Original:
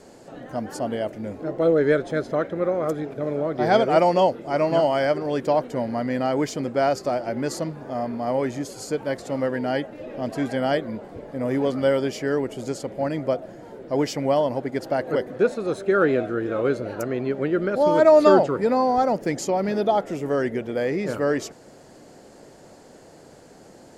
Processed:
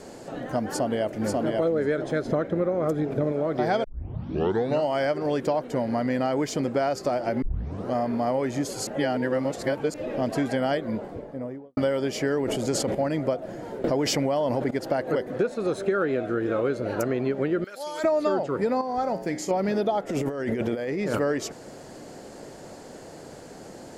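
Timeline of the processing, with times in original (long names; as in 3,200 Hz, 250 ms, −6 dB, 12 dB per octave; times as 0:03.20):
0:00.67–0:01.58: delay throw 540 ms, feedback 15%, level −2 dB
0:02.25–0:03.32: low-shelf EQ 420 Hz +7.5 dB
0:03.84: tape start 1.01 s
0:07.42: tape start 0.52 s
0:08.87–0:09.94: reverse
0:10.77–0:11.77: fade out and dull
0:12.31–0:12.95: level that may fall only so fast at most 41 dB per second
0:13.84–0:14.71: envelope flattener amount 70%
0:17.64–0:18.04: first difference
0:18.81–0:19.51: tuned comb filter 61 Hz, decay 0.6 s, harmonics odd, mix 70%
0:20.09–0:21.19: compressor whose output falls as the input rises −31 dBFS
whole clip: downward compressor 6 to 1, threshold −27 dBFS; level +5 dB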